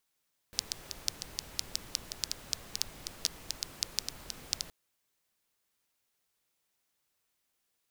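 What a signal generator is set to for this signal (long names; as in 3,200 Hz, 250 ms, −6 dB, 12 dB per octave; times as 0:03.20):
rain-like ticks over hiss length 4.17 s, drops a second 6.3, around 5,000 Hz, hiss −9 dB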